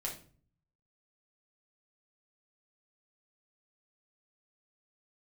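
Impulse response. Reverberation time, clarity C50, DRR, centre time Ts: 0.45 s, 8.0 dB, -2.5 dB, 22 ms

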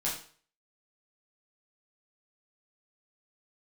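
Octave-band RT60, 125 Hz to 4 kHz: 0.45, 0.40, 0.45, 0.45, 0.45, 0.45 s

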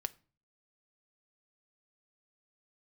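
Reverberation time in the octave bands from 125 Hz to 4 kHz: 0.65, 0.50, 0.40, 0.35, 0.35, 0.30 s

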